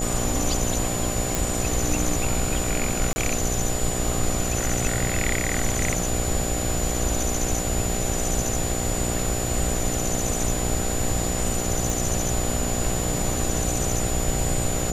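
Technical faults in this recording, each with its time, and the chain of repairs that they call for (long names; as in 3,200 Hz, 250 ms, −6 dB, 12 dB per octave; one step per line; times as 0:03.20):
mains buzz 60 Hz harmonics 13 −29 dBFS
whistle 7,000 Hz −30 dBFS
0:01.35: click
0:03.13–0:03.16: drop-out 30 ms
0:11.90: click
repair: click removal
notch filter 7,000 Hz, Q 30
hum removal 60 Hz, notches 13
repair the gap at 0:03.13, 30 ms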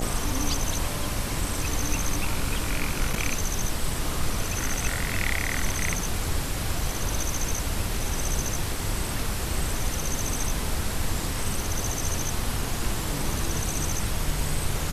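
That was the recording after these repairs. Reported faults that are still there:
none of them is left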